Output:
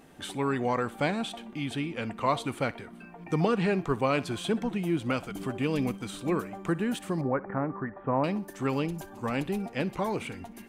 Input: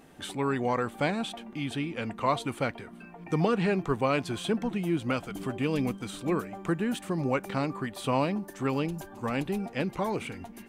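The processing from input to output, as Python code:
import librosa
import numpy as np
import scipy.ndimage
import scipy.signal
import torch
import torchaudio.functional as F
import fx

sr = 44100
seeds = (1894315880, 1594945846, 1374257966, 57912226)

y = fx.ellip_lowpass(x, sr, hz=1800.0, order=4, stop_db=60, at=(7.21, 8.24))
y = fx.echo_thinned(y, sr, ms=62, feedback_pct=38, hz=420.0, wet_db=-19.5)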